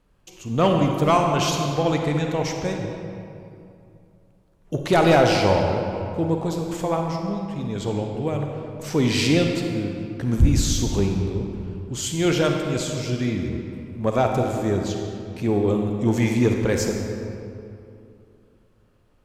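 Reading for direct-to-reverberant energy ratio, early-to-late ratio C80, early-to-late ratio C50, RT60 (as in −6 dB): 2.0 dB, 4.0 dB, 2.5 dB, 2.6 s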